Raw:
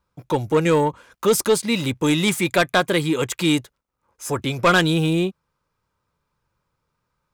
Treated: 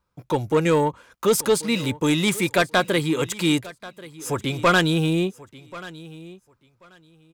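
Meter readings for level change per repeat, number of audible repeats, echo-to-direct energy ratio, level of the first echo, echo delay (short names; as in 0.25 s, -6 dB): -15.0 dB, 2, -19.0 dB, -19.0 dB, 1.085 s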